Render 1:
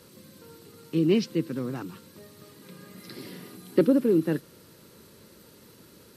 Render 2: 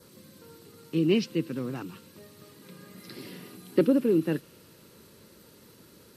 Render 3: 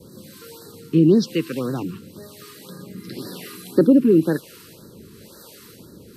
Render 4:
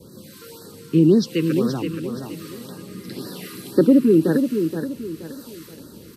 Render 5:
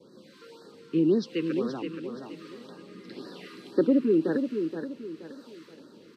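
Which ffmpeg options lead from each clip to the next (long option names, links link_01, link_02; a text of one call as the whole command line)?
ffmpeg -i in.wav -af "adynamicequalizer=threshold=0.00126:dfrequency=2700:dqfactor=3.9:tfrequency=2700:tqfactor=3.9:attack=5:release=100:ratio=0.375:range=3:mode=boostabove:tftype=bell,volume=-1.5dB" out.wav
ffmpeg -i in.wav -filter_complex "[0:a]asplit=2[link_01][link_02];[link_02]alimiter=limit=-21dB:level=0:latency=1:release=174,volume=-0.5dB[link_03];[link_01][link_03]amix=inputs=2:normalize=0,acrossover=split=460[link_04][link_05];[link_04]aeval=exprs='val(0)*(1-0.7/2+0.7/2*cos(2*PI*1*n/s))':channel_layout=same[link_06];[link_05]aeval=exprs='val(0)*(1-0.7/2-0.7/2*cos(2*PI*1*n/s))':channel_layout=same[link_07];[link_06][link_07]amix=inputs=2:normalize=0,afftfilt=real='re*(1-between(b*sr/1024,640*pow(2700/640,0.5+0.5*sin(2*PI*1.9*pts/sr))/1.41,640*pow(2700/640,0.5+0.5*sin(2*PI*1.9*pts/sr))*1.41))':imag='im*(1-between(b*sr/1024,640*pow(2700/640,0.5+0.5*sin(2*PI*1.9*pts/sr))/1.41,640*pow(2700/640,0.5+0.5*sin(2*PI*1.9*pts/sr))*1.41))':win_size=1024:overlap=0.75,volume=7.5dB" out.wav
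ffmpeg -i in.wav -af "aecho=1:1:474|948|1422|1896:0.447|0.156|0.0547|0.0192" out.wav
ffmpeg -i in.wav -af "highpass=260,lowpass=3900,volume=-6dB" out.wav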